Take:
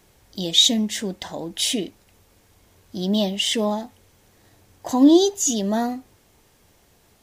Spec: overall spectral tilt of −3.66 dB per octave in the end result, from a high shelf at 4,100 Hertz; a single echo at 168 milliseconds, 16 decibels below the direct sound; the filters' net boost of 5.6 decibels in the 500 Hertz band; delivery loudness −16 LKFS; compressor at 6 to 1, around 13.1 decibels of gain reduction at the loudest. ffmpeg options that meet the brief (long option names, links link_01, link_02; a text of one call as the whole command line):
ffmpeg -i in.wav -af "equalizer=frequency=500:width_type=o:gain=8.5,highshelf=frequency=4100:gain=-5.5,acompressor=threshold=-21dB:ratio=6,aecho=1:1:168:0.158,volume=10dB" out.wav